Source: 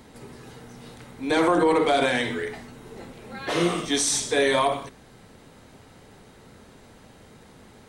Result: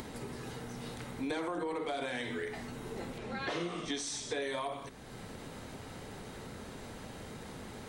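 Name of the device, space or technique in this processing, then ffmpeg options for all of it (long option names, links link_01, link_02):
upward and downward compression: -filter_complex "[0:a]acompressor=mode=upward:threshold=-39dB:ratio=2.5,acompressor=threshold=-34dB:ratio=8,asettb=1/sr,asplit=3[link_01][link_02][link_03];[link_01]atrim=end=3.184[link_04];[link_02]atrim=start=3.18:end=4.42,asetpts=PTS-STARTPTS,afade=type=in:duration=0.004:curve=qsin,afade=type=out:start_time=1.236:duration=0.004:curve=qsin,lowpass=6800[link_05];[link_03]atrim=start=4.416[link_06];[link_04][link_05]acrossfade=duration=0.004:curve1=hsin:curve2=qsin[link_07];[link_07][link_06]acrossfade=duration=0.004:curve1=qsin:curve2=hsin"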